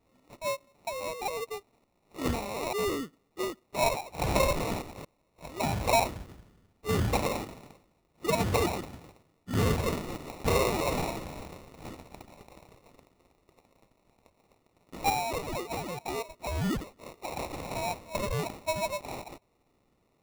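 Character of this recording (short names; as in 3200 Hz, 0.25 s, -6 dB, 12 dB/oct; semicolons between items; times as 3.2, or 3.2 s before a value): a quantiser's noise floor 12-bit, dither none; phasing stages 6, 0.15 Hz, lowest notch 250–2700 Hz; aliases and images of a low sample rate 1600 Hz, jitter 0%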